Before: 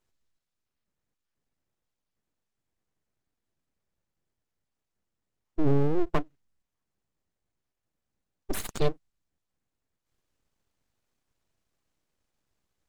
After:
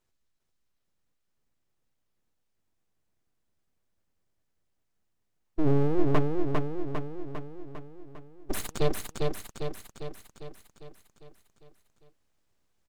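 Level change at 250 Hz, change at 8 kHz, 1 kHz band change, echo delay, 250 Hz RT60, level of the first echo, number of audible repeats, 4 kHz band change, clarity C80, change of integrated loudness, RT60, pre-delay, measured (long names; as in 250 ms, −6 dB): +2.5 dB, +2.5 dB, +2.5 dB, 401 ms, no reverb audible, −3.0 dB, 7, +2.5 dB, no reverb audible, −1.5 dB, no reverb audible, no reverb audible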